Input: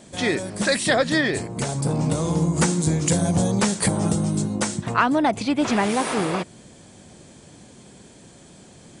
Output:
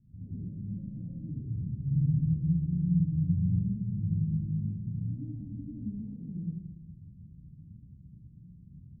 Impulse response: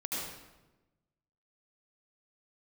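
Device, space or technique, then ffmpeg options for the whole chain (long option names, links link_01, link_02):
club heard from the street: -filter_complex "[0:a]alimiter=limit=-17dB:level=0:latency=1:release=192,lowpass=frequency=140:width=0.5412,lowpass=frequency=140:width=1.3066[link_01];[1:a]atrim=start_sample=2205[link_02];[link_01][link_02]afir=irnorm=-1:irlink=0"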